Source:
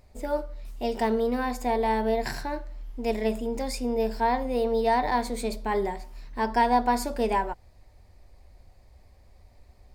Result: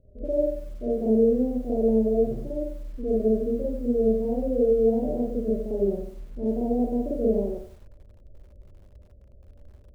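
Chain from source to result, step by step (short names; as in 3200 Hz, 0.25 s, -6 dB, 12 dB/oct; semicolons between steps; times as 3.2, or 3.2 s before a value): Chebyshev low-pass 620 Hz, order 6; reverb, pre-delay 50 ms, DRR -5.5 dB; lo-fi delay 94 ms, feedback 35%, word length 8-bit, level -11 dB; gain -2 dB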